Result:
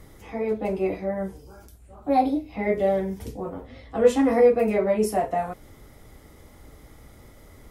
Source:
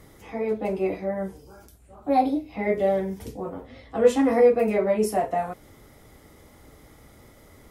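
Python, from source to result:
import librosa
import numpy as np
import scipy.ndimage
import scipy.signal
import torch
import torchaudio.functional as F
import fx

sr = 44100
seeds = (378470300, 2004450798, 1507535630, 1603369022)

y = fx.low_shelf(x, sr, hz=62.0, db=9.5)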